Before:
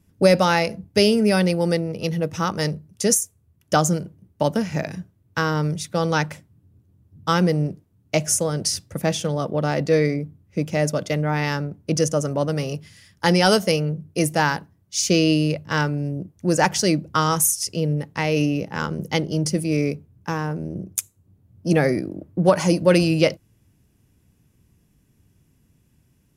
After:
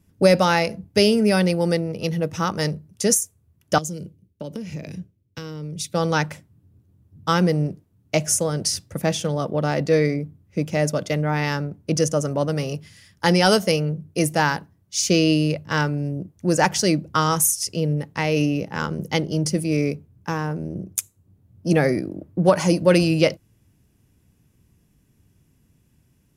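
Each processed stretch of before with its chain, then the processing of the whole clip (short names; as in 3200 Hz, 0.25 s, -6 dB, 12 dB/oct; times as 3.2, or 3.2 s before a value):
3.78–5.94 band shelf 1100 Hz -11 dB + compressor 16:1, threshold -27 dBFS + three-band expander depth 70%
whole clip: dry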